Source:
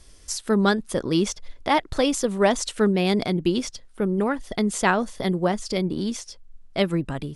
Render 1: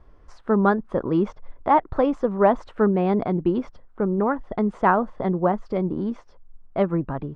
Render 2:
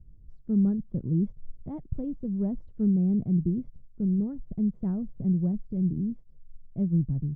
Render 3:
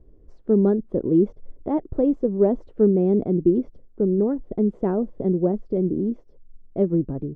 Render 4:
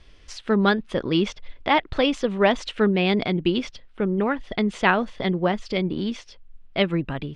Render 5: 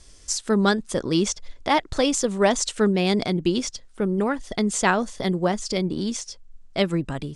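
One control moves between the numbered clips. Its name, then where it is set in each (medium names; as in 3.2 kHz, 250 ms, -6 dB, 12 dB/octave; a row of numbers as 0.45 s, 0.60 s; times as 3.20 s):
resonant low-pass, frequency: 1.1 kHz, 150 Hz, 400 Hz, 2.9 kHz, 7.6 kHz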